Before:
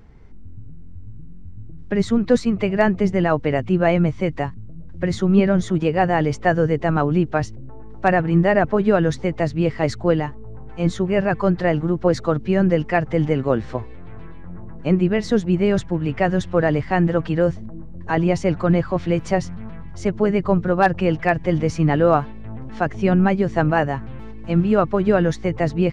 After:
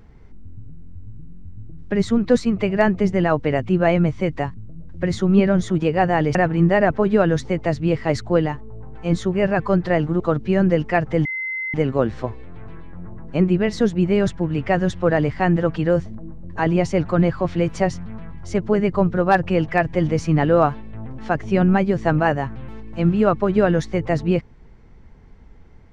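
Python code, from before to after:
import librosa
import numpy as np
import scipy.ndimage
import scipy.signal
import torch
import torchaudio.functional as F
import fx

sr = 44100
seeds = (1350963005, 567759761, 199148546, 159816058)

y = fx.edit(x, sr, fx.cut(start_s=6.35, length_s=1.74),
    fx.cut(start_s=11.94, length_s=0.26),
    fx.insert_tone(at_s=13.25, length_s=0.49, hz=2060.0, db=-23.5), tone=tone)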